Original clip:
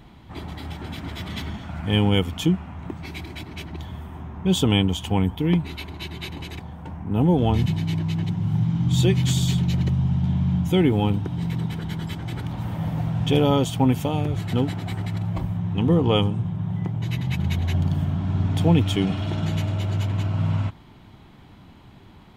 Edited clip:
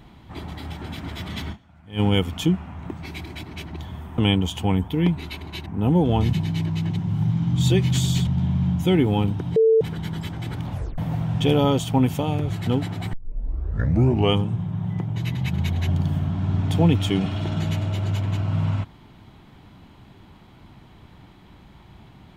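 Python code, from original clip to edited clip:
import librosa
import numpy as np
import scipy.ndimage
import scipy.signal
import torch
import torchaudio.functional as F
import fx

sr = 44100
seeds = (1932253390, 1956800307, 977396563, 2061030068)

y = fx.edit(x, sr, fx.fade_down_up(start_s=1.52, length_s=0.48, db=-19.5, fade_s=0.24, curve='exp'),
    fx.cut(start_s=4.18, length_s=0.47),
    fx.cut(start_s=6.13, length_s=0.86),
    fx.cut(start_s=9.6, length_s=0.53),
    fx.bleep(start_s=11.42, length_s=0.25, hz=446.0, db=-12.5),
    fx.tape_stop(start_s=12.57, length_s=0.27),
    fx.tape_start(start_s=14.99, length_s=1.22), tone=tone)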